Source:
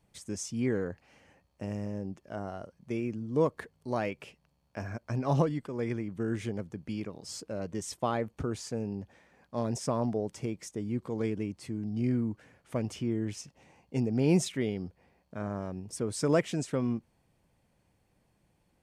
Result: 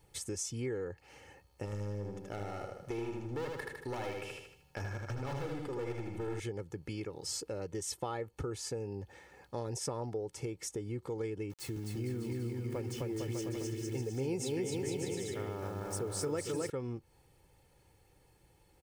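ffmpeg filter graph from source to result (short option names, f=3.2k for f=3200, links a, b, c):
-filter_complex "[0:a]asettb=1/sr,asplit=3[a][b][c];[a]atrim=end=1.654[d];[b]atrim=start=1.65:end=6.4,asetpts=PTS-STARTPTS,afade=t=in:d=0.004:c=qsin,afade=t=out:st=4.746:d=0.004:c=qsin,volume=32.5dB,asoftclip=hard,volume=-32.5dB,aecho=1:1:78|156|234|312|390|468:0.668|0.294|0.129|0.0569|0.0251|0.011,atrim=end_sample=209475[e];[c]atrim=start=6.396[f];[d][e]acrossfade=d=0.004:c1=hsin:c2=qsin[g];[g][f]acrossfade=d=0.004:c1=qsin:c2=hsin,asettb=1/sr,asplit=3[h][i][j];[h]atrim=end=11.504[k];[i]atrim=start=11.5:end=16.7,asetpts=PTS-STARTPTS,afade=t=in:d=0.004:c=qsin,afade=t=out:st=5.196:d=0.004:c=qsin,aeval=exprs='val(0)*gte(abs(val(0)),0.00355)':c=same,aecho=1:1:260|455|601.2|710.9|793.2|854.9:0.794|0.631|0.501|0.398|0.316|0.251,atrim=end_sample=229320[l];[j]atrim=start=16.696[m];[k][l]acrossfade=d=0.004:c1=hsin:c2=qsin[n];[n][m]acrossfade=d=0.004:c1=qsin:c2=hsin,aecho=1:1:2.3:0.67,acompressor=threshold=-42dB:ratio=3,highshelf=f=9.1k:g=6.5,volume=3.5dB"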